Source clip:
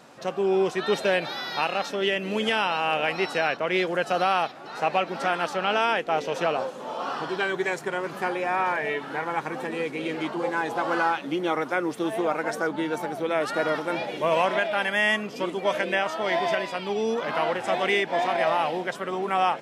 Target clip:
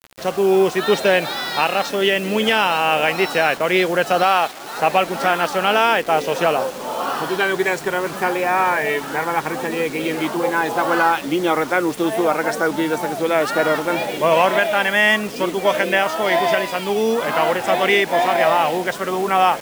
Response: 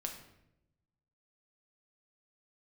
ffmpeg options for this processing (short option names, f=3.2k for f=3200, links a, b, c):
-filter_complex "[0:a]acrusher=bits=6:mix=0:aa=0.000001,asettb=1/sr,asplit=3[a][b][c];[a]atrim=end=4.234[d];[b]atrim=start=4.23:end=4.77,asetpts=PTS-STARTPTS,afade=t=in:d=0.004:c=qsin,afade=t=out:st=0.536:d=0.004:c=qsin,highpass=f=290:p=1[e];[c]atrim=start=4.766[f];[d][e]acrossfade=d=0.004:c1=hsin:c2=qsin[g];[g][f]acrossfade=d=0.004:c1=qsin:c2=hsin,volume=7.5dB"